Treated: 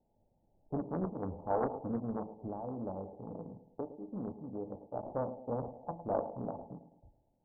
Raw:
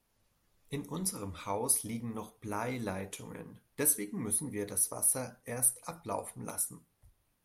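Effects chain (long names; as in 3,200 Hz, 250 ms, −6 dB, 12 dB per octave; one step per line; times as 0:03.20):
one scale factor per block 3 bits
low-shelf EQ 330 Hz −5 dB
0:02.36–0:04.93: downward compressor 2.5 to 1, threshold −44 dBFS, peak gain reduction 14.5 dB
Chebyshev low-pass with heavy ripple 880 Hz, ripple 3 dB
feedback echo with a high-pass in the loop 108 ms, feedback 49%, high-pass 160 Hz, level −11 dB
highs frequency-modulated by the lows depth 0.79 ms
level +7.5 dB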